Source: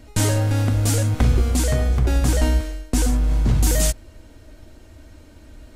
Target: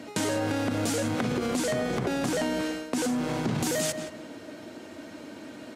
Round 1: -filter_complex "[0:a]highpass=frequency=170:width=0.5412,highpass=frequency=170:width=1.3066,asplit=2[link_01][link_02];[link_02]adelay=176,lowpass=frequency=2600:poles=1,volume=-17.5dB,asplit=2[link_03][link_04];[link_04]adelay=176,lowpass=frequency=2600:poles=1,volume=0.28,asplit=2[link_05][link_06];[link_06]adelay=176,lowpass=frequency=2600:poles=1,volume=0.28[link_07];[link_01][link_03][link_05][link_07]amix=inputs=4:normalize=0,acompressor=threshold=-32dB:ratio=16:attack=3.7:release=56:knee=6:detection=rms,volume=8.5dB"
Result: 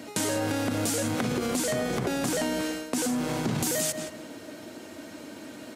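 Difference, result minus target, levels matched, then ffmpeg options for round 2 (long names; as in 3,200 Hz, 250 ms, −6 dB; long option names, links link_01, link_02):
8,000 Hz band +3.5 dB
-filter_complex "[0:a]highpass=frequency=170:width=0.5412,highpass=frequency=170:width=1.3066,highshelf=frequency=7500:gain=-11,asplit=2[link_01][link_02];[link_02]adelay=176,lowpass=frequency=2600:poles=1,volume=-17.5dB,asplit=2[link_03][link_04];[link_04]adelay=176,lowpass=frequency=2600:poles=1,volume=0.28,asplit=2[link_05][link_06];[link_06]adelay=176,lowpass=frequency=2600:poles=1,volume=0.28[link_07];[link_01][link_03][link_05][link_07]amix=inputs=4:normalize=0,acompressor=threshold=-32dB:ratio=16:attack=3.7:release=56:knee=6:detection=rms,volume=8.5dB"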